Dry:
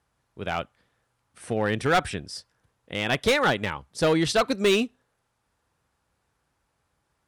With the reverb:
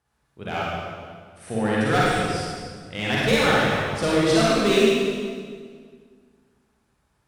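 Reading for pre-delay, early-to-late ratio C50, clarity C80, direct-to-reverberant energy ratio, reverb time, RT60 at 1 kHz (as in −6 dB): 38 ms, −5.0 dB, −1.5 dB, −7.0 dB, 1.9 s, 1.7 s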